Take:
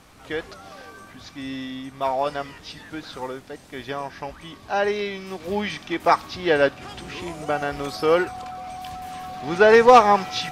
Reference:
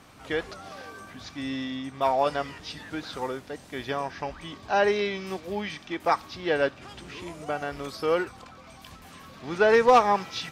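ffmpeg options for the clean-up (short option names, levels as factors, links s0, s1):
-af "bandreject=f=740:w=30,agate=range=0.0891:threshold=0.0158,asetnsamples=n=441:p=0,asendcmd='5.4 volume volume -6dB',volume=1"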